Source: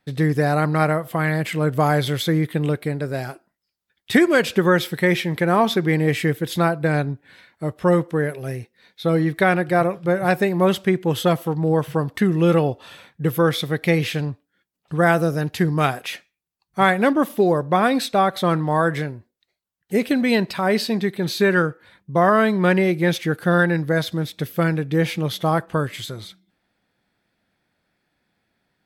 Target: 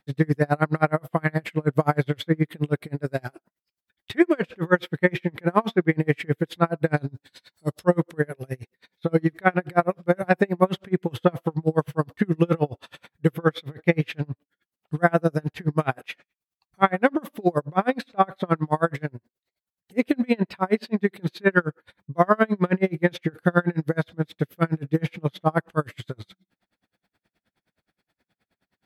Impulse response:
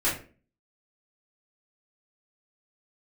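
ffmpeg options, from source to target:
-filter_complex "[0:a]asettb=1/sr,asplit=3[a][b][c];[a]atrim=end=6.974[d];[b]atrim=start=6.97:end=7.84,asetpts=PTS-STARTPTS,afade=t=in:d=0.004:c=qsin,afade=t=out:st=0.866:d=0.004:c=qsin,highshelf=f=3.2k:t=q:w=1.5:g=12.5[e];[c]atrim=start=7.836[f];[d][e]acrossfade=d=0.004:c1=hsin:c2=qsin[g];[g][f]acrossfade=d=0.004:c1=qsin:c2=hsin,acrossover=split=2900[h][i];[i]acompressor=threshold=-48dB:ratio=5[j];[h][j]amix=inputs=2:normalize=0,aeval=exprs='val(0)*pow(10,-36*(0.5-0.5*cos(2*PI*9.5*n/s))/20)':c=same,volume=3dB"

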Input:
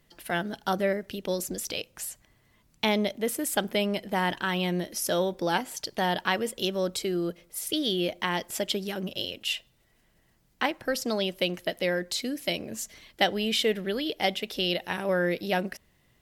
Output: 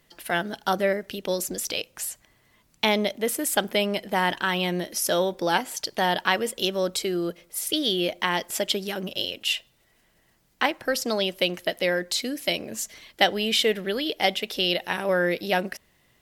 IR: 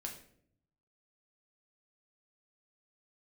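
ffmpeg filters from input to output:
-af "lowshelf=f=260:g=-7,volume=4.5dB"

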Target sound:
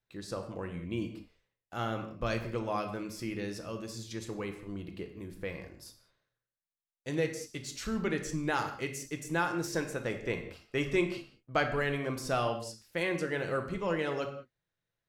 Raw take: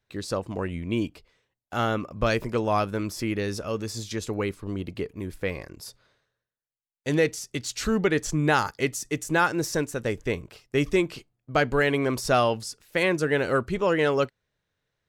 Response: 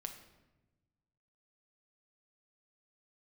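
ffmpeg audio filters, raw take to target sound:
-filter_complex "[0:a]asettb=1/sr,asplit=3[a][b][c];[a]atrim=end=9.644[d];[b]atrim=start=9.64:end=11.67,asetpts=PTS-STARTPTS,afade=t=in:d=0.004:c=qsin,afade=t=out:st=2.026:d=0.004:c=qsin,equalizer=f=1.4k:w=0.3:g=5[e];[c]atrim=start=11.666[f];[d][e]acrossfade=d=0.004:c1=hsin:c2=qsin[g];[g][f]acrossfade=d=0.004:c1=qsin:c2=hsin[h];[1:a]atrim=start_sample=2205,afade=t=out:st=0.26:d=0.01,atrim=end_sample=11907[i];[h][i]afir=irnorm=-1:irlink=0,volume=-6dB"

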